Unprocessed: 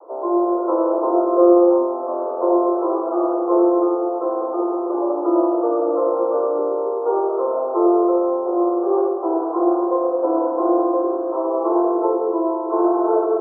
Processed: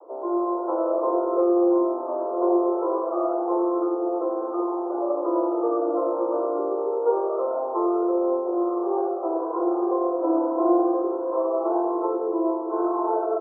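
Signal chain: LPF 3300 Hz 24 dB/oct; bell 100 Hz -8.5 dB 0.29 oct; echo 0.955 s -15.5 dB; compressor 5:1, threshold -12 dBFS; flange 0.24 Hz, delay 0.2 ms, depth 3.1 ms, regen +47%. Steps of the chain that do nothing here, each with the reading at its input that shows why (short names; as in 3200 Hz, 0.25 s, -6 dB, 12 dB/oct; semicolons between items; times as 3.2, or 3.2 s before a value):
LPF 3300 Hz: input band ends at 1300 Hz; bell 100 Hz: input band starts at 290 Hz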